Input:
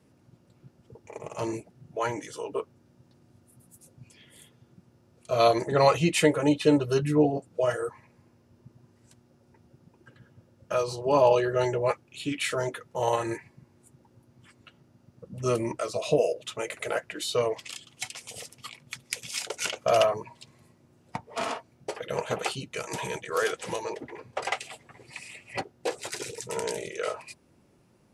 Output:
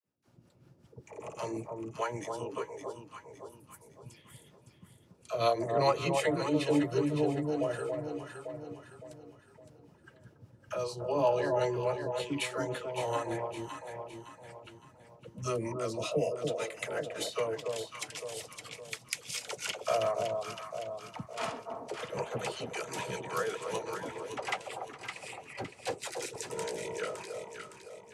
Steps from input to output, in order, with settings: harmonic tremolo 5.2 Hz, depth 70%, crossover 470 Hz; gate with hold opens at -56 dBFS; echo with dull and thin repeats by turns 0.281 s, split 1000 Hz, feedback 63%, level -4.5 dB; in parallel at +0.5 dB: compressor, threshold -36 dBFS, peak gain reduction 18 dB; on the sum: dispersion lows, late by 56 ms, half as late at 430 Hz; gain -6 dB

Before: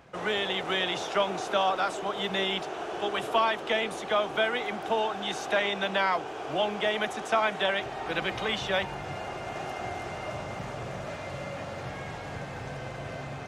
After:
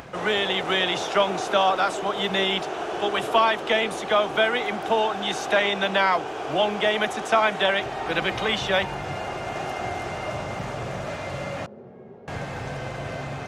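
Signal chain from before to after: upward compressor, threshold -40 dBFS; 11.66–12.28 double band-pass 300 Hz, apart 0.74 oct; gain +5.5 dB

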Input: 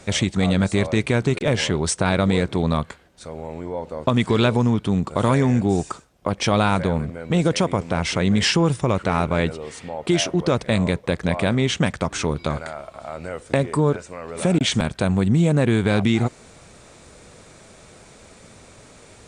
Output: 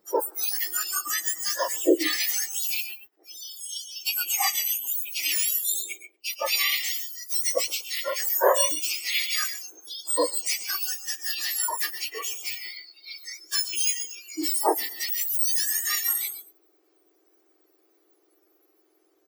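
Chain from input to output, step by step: spectrum mirrored in octaves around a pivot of 1700 Hz; tapped delay 0.108/0.126/0.142/0.235 s -15.5/-11/-12/-16.5 dB; spectral noise reduction 23 dB

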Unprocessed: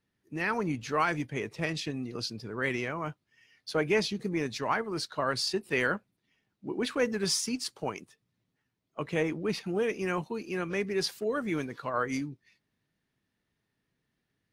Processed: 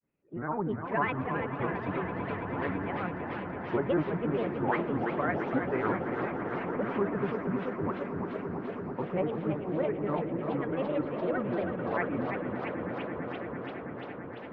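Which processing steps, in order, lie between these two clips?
LPF 1500 Hz 24 dB/oct; grains, grains 20/s, spray 12 ms, pitch spread up and down by 7 st; swelling echo 0.111 s, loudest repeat 8, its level -15 dB; warbling echo 0.334 s, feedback 71%, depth 216 cents, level -6.5 dB

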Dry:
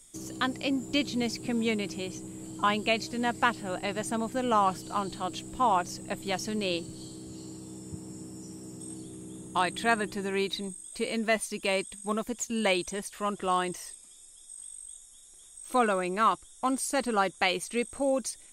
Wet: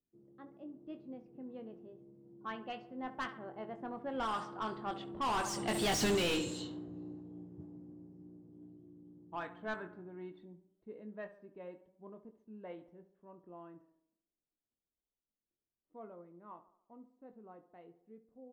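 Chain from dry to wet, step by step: Doppler pass-by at 5.98, 24 m/s, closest 1.4 m; bell 2700 Hz +5 dB 1.6 oct; notch 2400 Hz, Q 9; low-pass opened by the level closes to 340 Hz, open at -48 dBFS; doubler 23 ms -9 dB; tape echo 69 ms, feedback 57%, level -13.5 dB, low-pass 2100 Hz; overdrive pedal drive 34 dB, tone 5600 Hz, clips at -22 dBFS; low shelf 350 Hz +10 dB; gain -5 dB

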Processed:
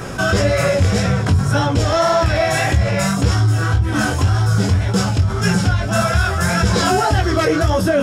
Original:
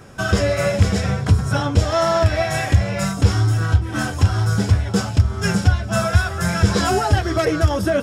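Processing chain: chorus 1.8 Hz, delay 16 ms, depth 5.8 ms; notches 50/100/150/200 Hz; fast leveller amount 50%; gain +2 dB

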